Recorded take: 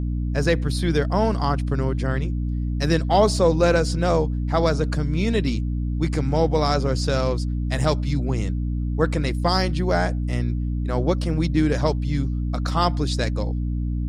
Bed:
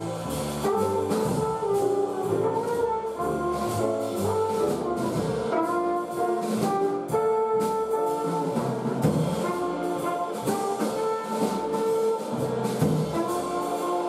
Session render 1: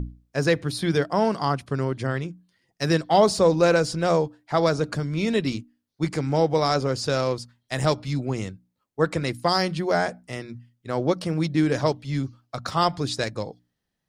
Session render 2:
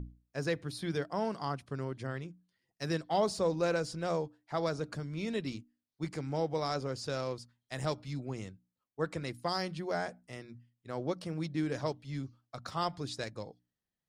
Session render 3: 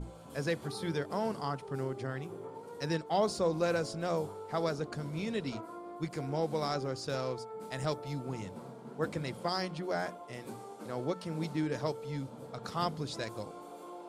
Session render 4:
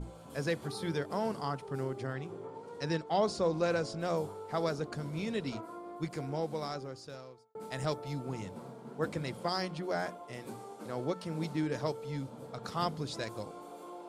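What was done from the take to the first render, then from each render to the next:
notches 60/120/180/240/300 Hz
gain -12 dB
add bed -20 dB
2.13–3.99 LPF 7500 Hz; 6.06–7.55 fade out linear

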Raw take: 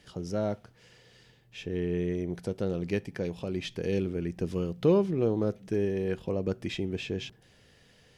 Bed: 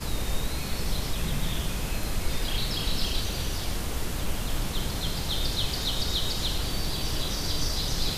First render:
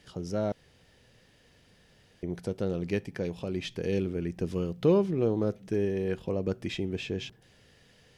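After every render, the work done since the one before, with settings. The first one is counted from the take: 0.52–2.23 room tone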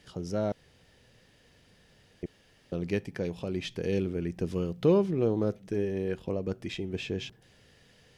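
2.26–2.72 room tone; 5.59–6.94 AM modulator 93 Hz, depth 25%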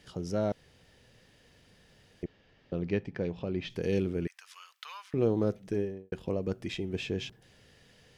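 2.24–3.7 air absorption 180 m; 4.27–5.14 steep high-pass 1100 Hz; 5.7–6.12 studio fade out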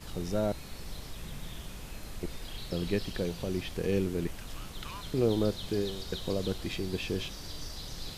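add bed -13 dB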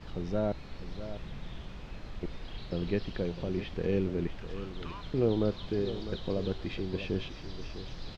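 air absorption 210 m; echo 0.652 s -12 dB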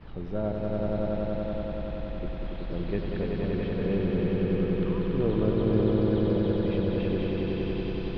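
air absorption 300 m; swelling echo 94 ms, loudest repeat 5, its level -4 dB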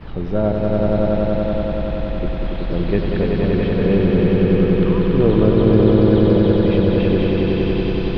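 gain +11.5 dB; limiter -2 dBFS, peak gain reduction 1.5 dB

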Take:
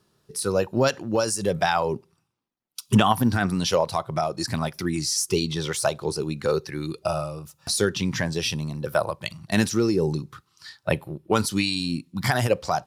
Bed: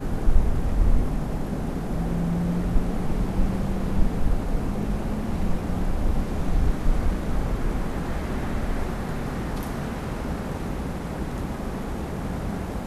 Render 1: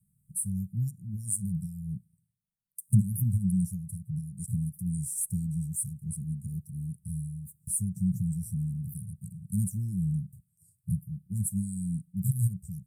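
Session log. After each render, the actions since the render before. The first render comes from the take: Chebyshev band-stop 190–8300 Hz, order 5; bell 460 Hz +8.5 dB 0.52 oct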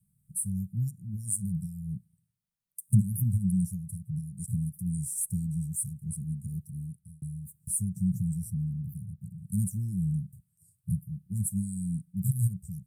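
6.73–7.22 fade out; 8.5–9.38 bell 8600 Hz -12 dB 2 oct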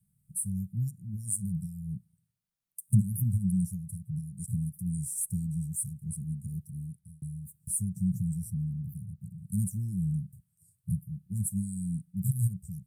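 gain -1 dB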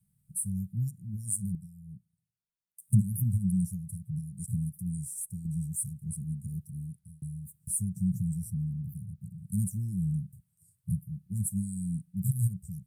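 1.55–2.8 gain -9.5 dB; 4.69–5.45 fade out, to -8.5 dB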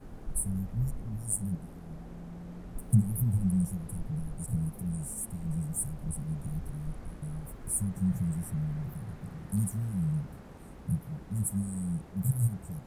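add bed -19 dB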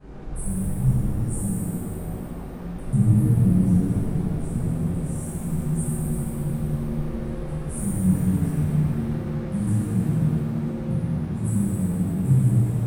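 air absorption 83 m; shimmer reverb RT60 2.3 s, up +7 st, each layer -8 dB, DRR -10 dB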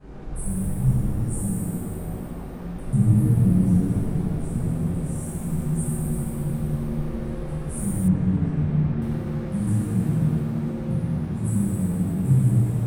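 8.08–9.02 air absorption 160 m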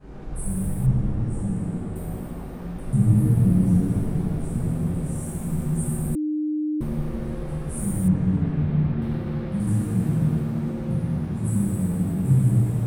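0.86–1.96 air absorption 110 m; 6.15–6.81 bleep 304 Hz -22 dBFS; 8.42–9.6 resonant high shelf 5200 Hz -6 dB, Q 1.5

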